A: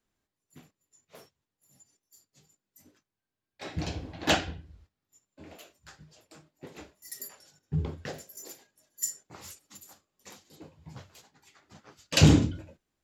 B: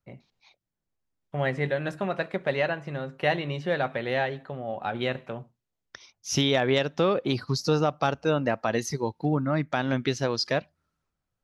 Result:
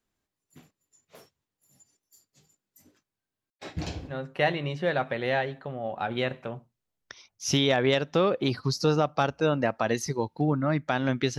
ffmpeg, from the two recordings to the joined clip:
-filter_complex "[0:a]asettb=1/sr,asplit=3[s0][s1][s2];[s0]atrim=end=3.504[s3];[s1]atrim=start=3.5:end=4.15,asetpts=PTS-STARTPTS,afade=t=in:d=0.004:c=qsin,afade=t=out:st=0.646:d=0.004:c=qsin,agate=range=0.0224:threshold=0.00891:ratio=3:release=100:detection=peak[s4];[s2]atrim=start=4.146[s5];[s3][s4]acrossfade=d=0.004:c1=hsin:c2=qsin[s6];[s6][s5]acrossfade=d=0.004:c1=qsin:c2=hsin,apad=whole_dur=11.38,atrim=end=11.38,atrim=end=4.15,asetpts=PTS-STARTPTS[s7];[1:a]atrim=start=2.91:end=10.22,asetpts=PTS-STARTPTS[s8];[s7][s8]acrossfade=d=0.08:c1=tri:c2=tri"

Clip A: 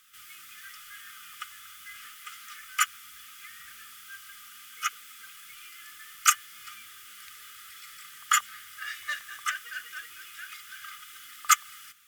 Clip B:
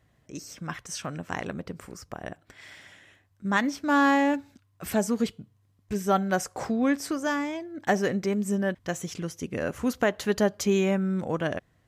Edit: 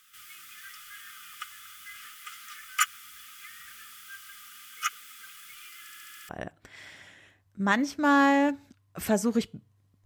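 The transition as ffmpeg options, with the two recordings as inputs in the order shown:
-filter_complex "[0:a]apad=whole_dur=10.05,atrim=end=10.05,asplit=7[s0][s1][s2][s3][s4][s5][s6];[s0]atrim=end=5.872[s7];[s1]atrim=start=5.798:end=5.872[s8];[s2]atrim=start=5.798:end=5.872[s9];[s3]atrim=start=5.798:end=5.872[s10];[s4]atrim=start=5.798:end=5.872[s11];[s5]atrim=start=5.798:end=5.872[s12];[s6]atrim=start=5.798:end=5.872[s13];[1:a]atrim=start=2.138:end=5.9[s14];[s7][s8]acrossfade=d=0.004:c1=hsin:c2=hsin[s15];[s15][s9]acrossfade=d=0.004:c1=hsin:c2=hsin[s16];[s16][s10]acrossfade=d=0.004:c1=hsin:c2=hsin[s17];[s17][s11]acrossfade=d=0.004:c1=hsin:c2=hsin[s18];[s18][s12]acrossfade=d=0.004:c1=hsin:c2=hsin[s19];[s19][s13]acrossfade=d=0.004:c1=hsin:c2=hsin[s20];[s20][s14]acrossfade=d=0.004:c1=hsin:c2=hsin"

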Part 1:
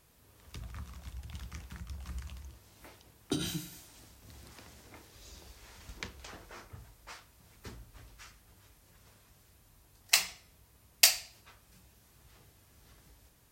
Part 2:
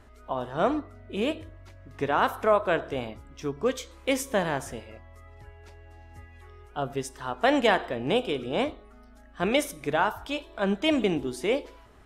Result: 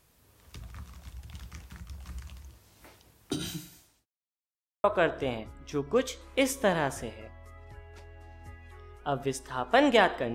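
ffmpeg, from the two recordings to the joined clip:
-filter_complex "[0:a]apad=whole_dur=10.34,atrim=end=10.34,asplit=2[s0][s1];[s0]atrim=end=4.06,asetpts=PTS-STARTPTS,afade=t=out:st=3.35:d=0.71:c=qsin[s2];[s1]atrim=start=4.06:end=4.84,asetpts=PTS-STARTPTS,volume=0[s3];[1:a]atrim=start=2.54:end=8.04,asetpts=PTS-STARTPTS,afade=t=in:d=0.004:c=hsin[s4];[s2][s3][s4]concat=n=3:v=0:a=1"

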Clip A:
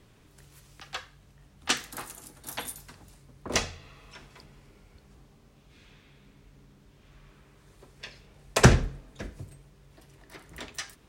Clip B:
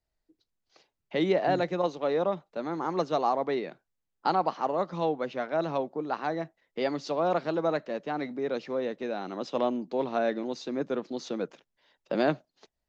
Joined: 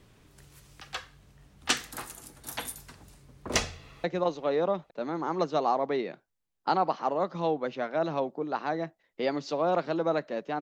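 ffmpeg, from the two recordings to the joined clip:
-filter_complex "[0:a]apad=whole_dur=10.61,atrim=end=10.61,atrim=end=4.042[s0];[1:a]atrim=start=1.618:end=8.19[s1];[s0][s1]acrossfade=d=0.004:c1=hsin:c2=hsin,asplit=2[s2][s3];[s3]afade=t=in:st=3.71:d=0.01,afade=t=out:st=4.04:d=0.01,aecho=0:1:430|860|1290|1720:0.199526|0.0897868|0.0404041|0.0181818[s4];[s2][s4]amix=inputs=2:normalize=0"

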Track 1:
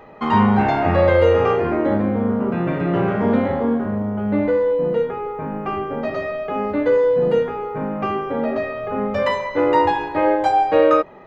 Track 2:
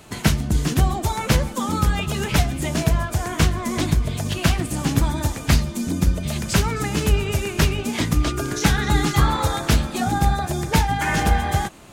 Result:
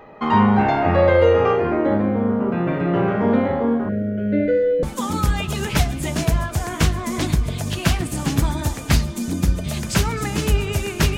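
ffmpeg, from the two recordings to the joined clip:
-filter_complex "[0:a]asettb=1/sr,asplit=3[s0][s1][s2];[s0]atrim=end=3.894[s3];[s1]atrim=start=3.89:end=4.83,asetpts=PTS-STARTPTS,afade=t=in:d=0.004:c=qsin,afade=t=out:st=0.936:d=0.004:c=qsin,asuperstop=centerf=960:order=20:qfactor=1.4[s4];[s2]atrim=start=4.826[s5];[s3][s4]acrossfade=d=0.004:c1=hsin:c2=qsin[s6];[s6][s5]acrossfade=d=0.004:c1=qsin:c2=hsin,apad=whole_dur=11.17,atrim=end=11.17,atrim=end=4.832[s7];[1:a]atrim=start=1.418:end=7.76[s8];[s7][s8]acrossfade=d=0.004:c1=hsin:c2=hsin"

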